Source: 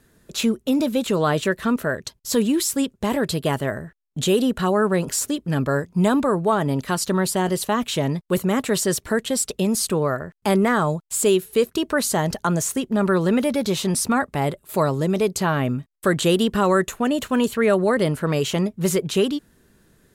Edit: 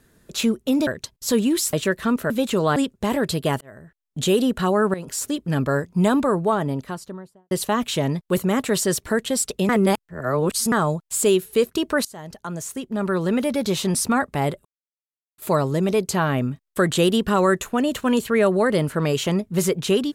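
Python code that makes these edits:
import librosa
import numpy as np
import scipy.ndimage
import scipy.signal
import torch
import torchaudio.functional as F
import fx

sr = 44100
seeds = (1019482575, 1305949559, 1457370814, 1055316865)

y = fx.studio_fade_out(x, sr, start_s=6.29, length_s=1.22)
y = fx.edit(y, sr, fx.swap(start_s=0.87, length_s=0.46, other_s=1.9, other_length_s=0.86),
    fx.fade_in_span(start_s=3.61, length_s=0.67),
    fx.fade_in_from(start_s=4.94, length_s=0.43, floor_db=-14.0),
    fx.reverse_span(start_s=9.69, length_s=1.03),
    fx.fade_in_from(start_s=12.05, length_s=1.69, floor_db=-22.0),
    fx.insert_silence(at_s=14.65, length_s=0.73), tone=tone)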